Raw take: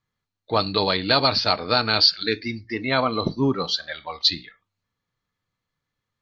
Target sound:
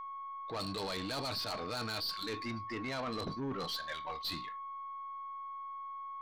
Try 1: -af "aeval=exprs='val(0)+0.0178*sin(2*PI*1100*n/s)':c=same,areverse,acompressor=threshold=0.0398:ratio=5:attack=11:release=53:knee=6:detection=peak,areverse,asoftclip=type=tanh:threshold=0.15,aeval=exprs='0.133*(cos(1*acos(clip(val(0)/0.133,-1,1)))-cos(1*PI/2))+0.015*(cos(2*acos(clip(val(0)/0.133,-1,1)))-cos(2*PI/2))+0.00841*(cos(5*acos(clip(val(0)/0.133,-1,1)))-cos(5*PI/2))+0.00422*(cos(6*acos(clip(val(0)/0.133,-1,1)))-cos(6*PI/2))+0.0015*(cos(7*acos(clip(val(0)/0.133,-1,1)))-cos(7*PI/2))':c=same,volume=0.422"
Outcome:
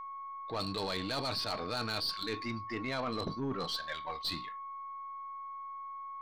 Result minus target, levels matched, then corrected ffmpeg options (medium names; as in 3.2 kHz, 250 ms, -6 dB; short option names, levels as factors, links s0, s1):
saturation: distortion -12 dB
-af "aeval=exprs='val(0)+0.0178*sin(2*PI*1100*n/s)':c=same,areverse,acompressor=threshold=0.0398:ratio=5:attack=11:release=53:knee=6:detection=peak,areverse,asoftclip=type=tanh:threshold=0.0473,aeval=exprs='0.133*(cos(1*acos(clip(val(0)/0.133,-1,1)))-cos(1*PI/2))+0.015*(cos(2*acos(clip(val(0)/0.133,-1,1)))-cos(2*PI/2))+0.00841*(cos(5*acos(clip(val(0)/0.133,-1,1)))-cos(5*PI/2))+0.00422*(cos(6*acos(clip(val(0)/0.133,-1,1)))-cos(6*PI/2))+0.0015*(cos(7*acos(clip(val(0)/0.133,-1,1)))-cos(7*PI/2))':c=same,volume=0.422"